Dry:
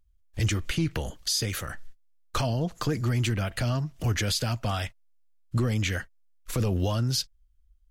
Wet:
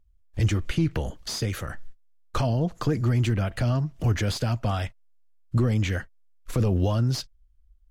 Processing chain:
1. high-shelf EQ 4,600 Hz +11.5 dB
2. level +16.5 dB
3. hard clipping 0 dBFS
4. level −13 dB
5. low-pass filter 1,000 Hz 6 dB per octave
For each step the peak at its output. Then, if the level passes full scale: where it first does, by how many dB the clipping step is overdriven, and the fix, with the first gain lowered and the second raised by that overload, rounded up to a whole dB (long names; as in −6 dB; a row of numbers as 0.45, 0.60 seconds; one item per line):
−9.0, +7.5, 0.0, −13.0, −14.5 dBFS
step 2, 7.5 dB
step 2 +8.5 dB, step 4 −5 dB